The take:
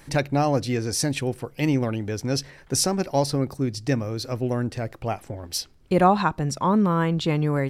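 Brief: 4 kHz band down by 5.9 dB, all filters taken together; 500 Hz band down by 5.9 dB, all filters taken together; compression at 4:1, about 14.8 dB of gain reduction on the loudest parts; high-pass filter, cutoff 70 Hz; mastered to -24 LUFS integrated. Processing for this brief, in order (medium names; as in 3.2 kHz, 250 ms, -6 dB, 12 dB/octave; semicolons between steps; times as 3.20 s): high-pass 70 Hz; peaking EQ 500 Hz -7.5 dB; peaking EQ 4 kHz -8.5 dB; compression 4:1, threshold -35 dBFS; trim +13.5 dB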